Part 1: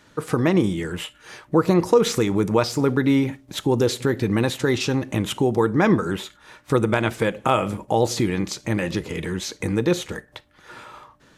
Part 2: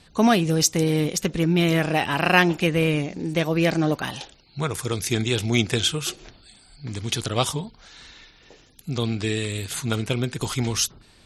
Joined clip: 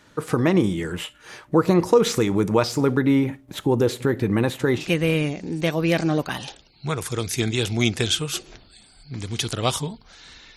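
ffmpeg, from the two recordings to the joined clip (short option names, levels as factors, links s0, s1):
-filter_complex "[0:a]asettb=1/sr,asplit=3[s0][s1][s2];[s0]atrim=end=2.994[s3];[s1]atrim=start=2.99:end=4.91,asetpts=PTS-STARTPTS,afade=t=in:d=0.004:c=qsin,afade=t=out:st=1.916:d=0.004:c=qsin,equalizer=f=5500:t=o:w=1.6:g=-6.5[s4];[s2]atrim=start=4.906[s5];[s3][s4]acrossfade=d=0.004:c1=hsin:c2=qsin[s6];[s6][s5]acrossfade=d=0.004:c1=qsin:c2=hsin,apad=whole_dur=10.56,atrim=end=10.56,atrim=end=4.91,asetpts=PTS-STARTPTS[s7];[1:a]atrim=start=2.48:end=8.29,asetpts=PTS-STARTPTS[s8];[s7][s8]acrossfade=d=0.16:c1=tri:c2=tri"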